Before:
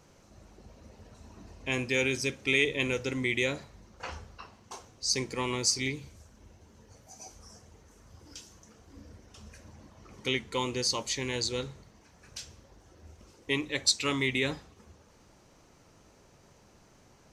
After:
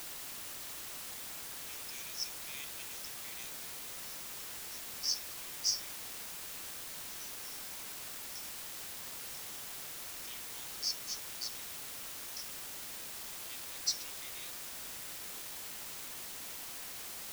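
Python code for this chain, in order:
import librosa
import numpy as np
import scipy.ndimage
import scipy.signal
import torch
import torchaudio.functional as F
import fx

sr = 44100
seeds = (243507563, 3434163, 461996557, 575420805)

y = fx.bandpass_q(x, sr, hz=5400.0, q=12.0)
y = fx.quant_dither(y, sr, seeds[0], bits=8, dither='triangular')
y = y * 10.0 ** (3.5 / 20.0)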